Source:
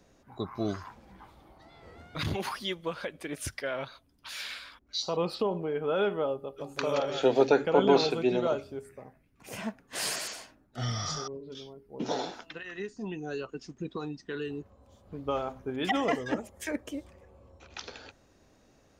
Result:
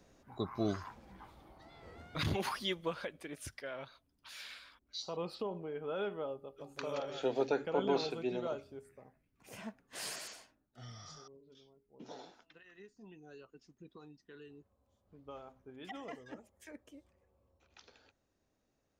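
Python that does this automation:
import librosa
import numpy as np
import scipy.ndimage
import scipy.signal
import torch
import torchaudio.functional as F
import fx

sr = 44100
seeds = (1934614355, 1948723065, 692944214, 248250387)

y = fx.gain(x, sr, db=fx.line((2.84, -2.5), (3.4, -10.0), (10.32, -10.0), (10.8, -18.0)))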